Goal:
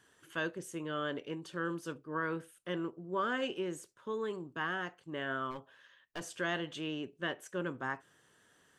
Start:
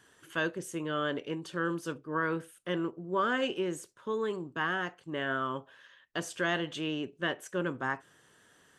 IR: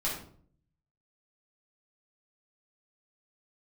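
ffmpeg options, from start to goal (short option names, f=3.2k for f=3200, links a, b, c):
-filter_complex "[0:a]asplit=3[a][b][c];[a]afade=t=out:st=5.5:d=0.02[d];[b]aeval=exprs='clip(val(0),-1,0.0158)':c=same,afade=t=in:st=5.5:d=0.02,afade=t=out:st=6.2:d=0.02[e];[c]afade=t=in:st=6.2:d=0.02[f];[d][e][f]amix=inputs=3:normalize=0,volume=-4.5dB"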